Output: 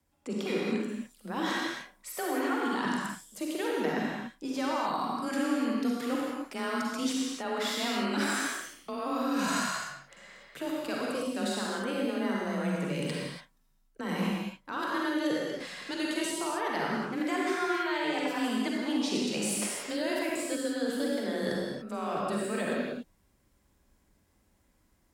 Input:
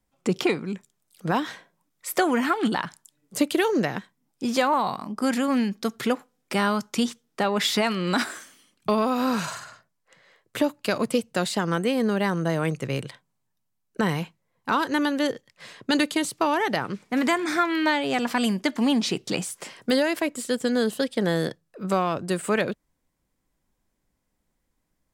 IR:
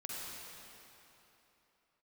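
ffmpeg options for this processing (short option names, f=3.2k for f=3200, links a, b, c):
-filter_complex "[0:a]areverse,acompressor=threshold=-34dB:ratio=12,areverse,afreqshift=27[a];[1:a]atrim=start_sample=2205,afade=t=out:st=0.38:d=0.01,atrim=end_sample=17199,asetrate=48510,aresample=44100[b];[a][b]afir=irnorm=-1:irlink=0,volume=8.5dB"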